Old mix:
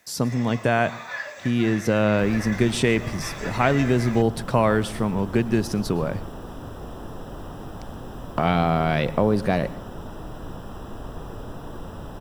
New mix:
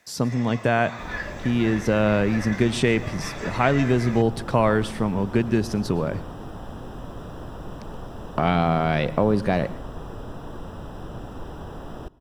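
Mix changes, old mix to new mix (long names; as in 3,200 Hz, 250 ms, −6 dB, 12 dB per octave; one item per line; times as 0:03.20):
second sound: entry −1.20 s
master: add high-shelf EQ 10,000 Hz −9.5 dB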